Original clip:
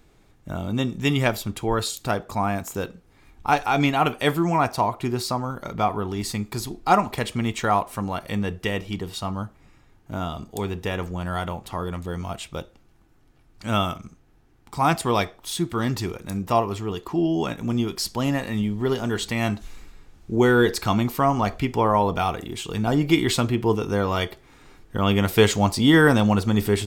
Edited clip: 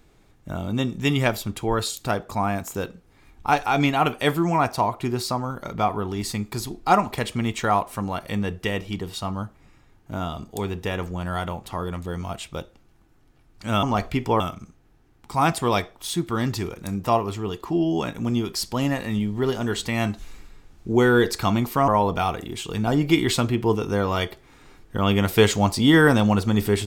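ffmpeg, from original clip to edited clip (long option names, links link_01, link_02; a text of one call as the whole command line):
ffmpeg -i in.wav -filter_complex "[0:a]asplit=4[link_01][link_02][link_03][link_04];[link_01]atrim=end=13.832[link_05];[link_02]atrim=start=21.308:end=21.882[link_06];[link_03]atrim=start=13.828:end=21.312[link_07];[link_04]atrim=start=21.878[link_08];[link_05][link_06]acrossfade=duration=0.004:curve1=hsin:curve2=hsin[link_09];[link_09][link_07]acrossfade=duration=0.004:curve1=hsin:curve2=hsin[link_10];[link_10][link_08]acrossfade=duration=0.004:curve1=hsin:curve2=hsin" out.wav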